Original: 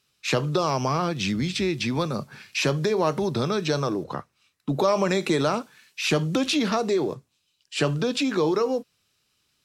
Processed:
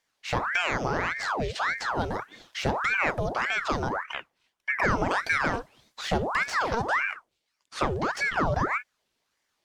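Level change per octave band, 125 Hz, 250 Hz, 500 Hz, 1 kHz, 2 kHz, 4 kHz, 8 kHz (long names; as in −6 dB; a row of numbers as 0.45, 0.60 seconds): −6.5, −9.5, −7.5, +1.5, +6.0, −6.5, −8.0 decibels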